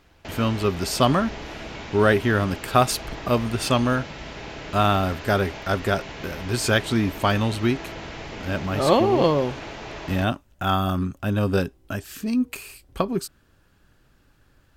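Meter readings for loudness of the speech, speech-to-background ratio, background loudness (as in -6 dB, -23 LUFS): -23.5 LUFS, 13.0 dB, -36.5 LUFS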